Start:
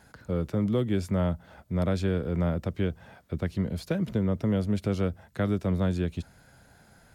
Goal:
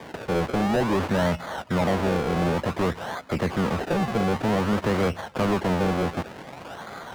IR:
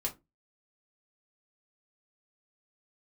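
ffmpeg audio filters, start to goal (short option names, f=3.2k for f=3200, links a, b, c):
-filter_complex "[0:a]acrusher=samples=32:mix=1:aa=0.000001:lfo=1:lforange=32:lforate=0.54,asplit=2[a][b];[b]highpass=f=720:p=1,volume=31dB,asoftclip=type=tanh:threshold=-15dB[c];[a][c]amix=inputs=2:normalize=0,lowpass=f=2.3k:p=1,volume=-6dB"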